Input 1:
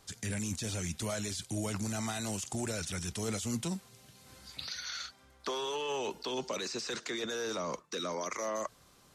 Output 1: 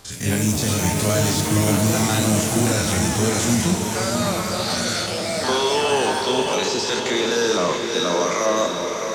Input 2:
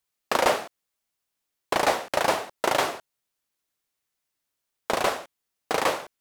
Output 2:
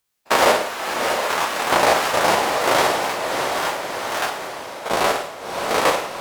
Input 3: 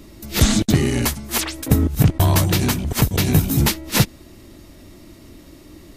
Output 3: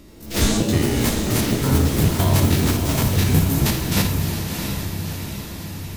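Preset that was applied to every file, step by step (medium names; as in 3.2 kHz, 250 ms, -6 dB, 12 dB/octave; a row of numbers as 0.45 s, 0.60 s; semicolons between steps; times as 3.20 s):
spectrogram pixelated in time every 50 ms; on a send: echo that smears into a reverb 656 ms, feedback 60%, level -5 dB; on the sum: Schroeder reverb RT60 0.62 s, DRR 7 dB; ever faster or slower copies 84 ms, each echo +6 st, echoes 3, each echo -6 dB; normalise loudness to -20 LUFS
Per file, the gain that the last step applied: +14.5 dB, +7.5 dB, -2.0 dB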